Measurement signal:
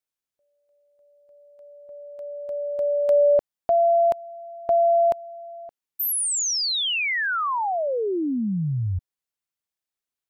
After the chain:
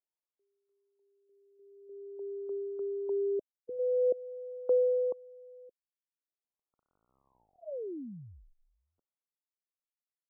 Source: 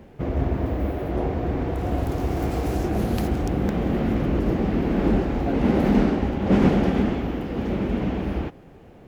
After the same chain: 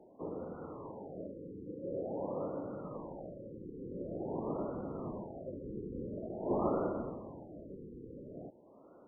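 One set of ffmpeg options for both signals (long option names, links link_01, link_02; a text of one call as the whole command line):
ffmpeg -i in.wav -af "highpass=frequency=520:width_type=q:width=0.5412,highpass=frequency=520:width_type=q:width=1.307,lowpass=frequency=3200:width_type=q:width=0.5176,lowpass=frequency=3200:width_type=q:width=0.7071,lowpass=frequency=3200:width_type=q:width=1.932,afreqshift=-180,aphaser=in_gain=1:out_gain=1:delay=1.1:decay=0.5:speed=0.45:type=sinusoidal,afftfilt=real='re*lt(b*sr/1024,510*pow(1500/510,0.5+0.5*sin(2*PI*0.47*pts/sr)))':imag='im*lt(b*sr/1024,510*pow(1500/510,0.5+0.5*sin(2*PI*0.47*pts/sr)))':win_size=1024:overlap=0.75,volume=-9dB" out.wav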